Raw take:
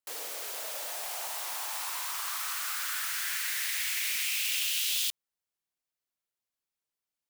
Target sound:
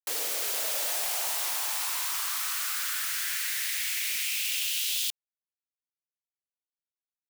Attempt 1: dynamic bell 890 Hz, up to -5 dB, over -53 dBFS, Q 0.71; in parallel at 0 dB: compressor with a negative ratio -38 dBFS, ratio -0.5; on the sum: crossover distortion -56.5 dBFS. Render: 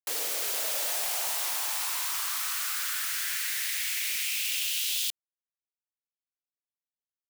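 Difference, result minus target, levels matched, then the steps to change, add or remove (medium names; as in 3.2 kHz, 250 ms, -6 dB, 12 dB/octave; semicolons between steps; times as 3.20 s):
crossover distortion: distortion +9 dB
change: crossover distortion -66 dBFS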